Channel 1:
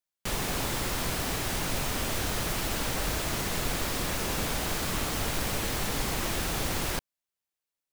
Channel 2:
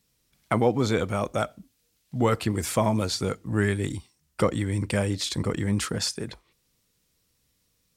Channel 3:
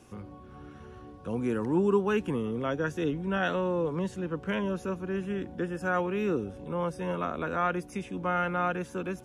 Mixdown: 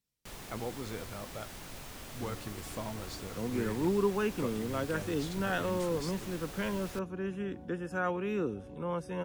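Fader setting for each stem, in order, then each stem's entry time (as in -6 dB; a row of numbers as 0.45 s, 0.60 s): -15.5 dB, -17.0 dB, -4.0 dB; 0.00 s, 0.00 s, 2.10 s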